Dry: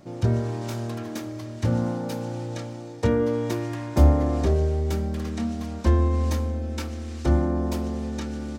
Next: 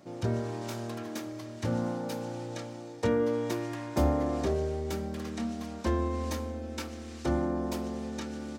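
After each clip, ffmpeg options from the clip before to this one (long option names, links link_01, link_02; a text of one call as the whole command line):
ffmpeg -i in.wav -af "highpass=frequency=220:poles=1,volume=-3dB" out.wav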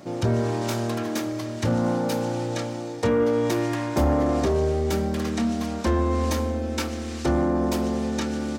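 ffmpeg -i in.wav -filter_complex "[0:a]asplit=2[link_01][link_02];[link_02]alimiter=level_in=1dB:limit=-24dB:level=0:latency=1,volume=-1dB,volume=2.5dB[link_03];[link_01][link_03]amix=inputs=2:normalize=0,asoftclip=type=tanh:threshold=-17.5dB,volume=3.5dB" out.wav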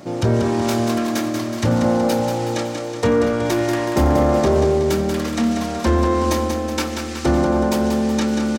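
ffmpeg -i in.wav -af "aecho=1:1:186|372|558|744|930|1116|1302:0.501|0.266|0.141|0.0746|0.0395|0.021|0.0111,volume=5dB" out.wav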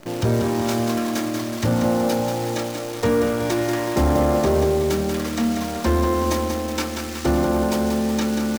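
ffmpeg -i in.wav -af "acrusher=bits=6:dc=4:mix=0:aa=0.000001,volume=-2.5dB" out.wav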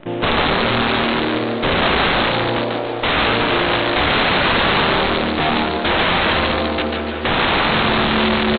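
ffmpeg -i in.wav -filter_complex "[0:a]aresample=8000,aeval=exprs='(mod(7.08*val(0)+1,2)-1)/7.08':channel_layout=same,aresample=44100,asplit=6[link_01][link_02][link_03][link_04][link_05][link_06];[link_02]adelay=143,afreqshift=150,volume=-4dB[link_07];[link_03]adelay=286,afreqshift=300,volume=-11.5dB[link_08];[link_04]adelay=429,afreqshift=450,volume=-19.1dB[link_09];[link_05]adelay=572,afreqshift=600,volume=-26.6dB[link_10];[link_06]adelay=715,afreqshift=750,volume=-34.1dB[link_11];[link_01][link_07][link_08][link_09][link_10][link_11]amix=inputs=6:normalize=0,volume=4dB" out.wav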